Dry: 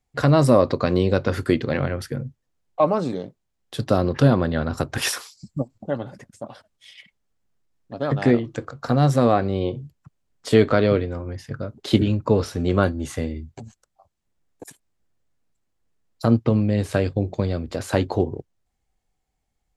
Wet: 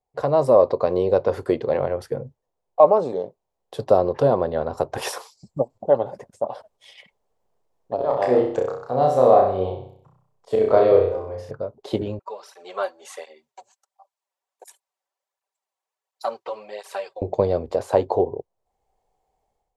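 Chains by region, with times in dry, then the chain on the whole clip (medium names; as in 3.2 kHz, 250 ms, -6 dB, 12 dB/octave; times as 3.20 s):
7.95–11.51 s: slow attack 130 ms + hum notches 60/120/180/240/300/360/420/480/540 Hz + flutter echo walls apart 5.5 m, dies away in 0.59 s
12.19–17.22 s: high-pass 1.3 kHz + comb 5.2 ms, depth 44% + cancelling through-zero flanger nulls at 1.4 Hz, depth 5.1 ms
whole clip: level rider; high-order bell 640 Hz +14.5 dB; trim -13 dB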